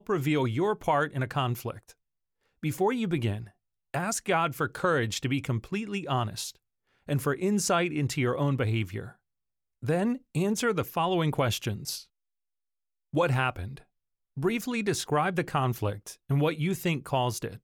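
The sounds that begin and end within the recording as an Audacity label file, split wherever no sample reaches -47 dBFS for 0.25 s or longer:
2.630000	3.490000	sound
3.940000	6.550000	sound
7.080000	9.120000	sound
9.820000	12.030000	sound
13.130000	13.810000	sound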